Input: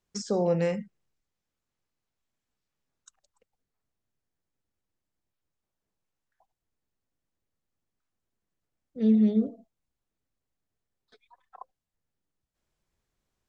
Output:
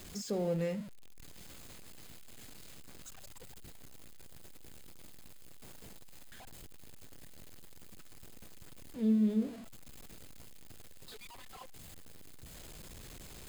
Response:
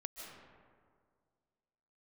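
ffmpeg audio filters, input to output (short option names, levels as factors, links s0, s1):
-af "aeval=exprs='val(0)+0.5*0.0178*sgn(val(0))':c=same,equalizer=f=1100:t=o:w=1.9:g=-6,bandreject=f=5700:w=8.5,volume=0.447"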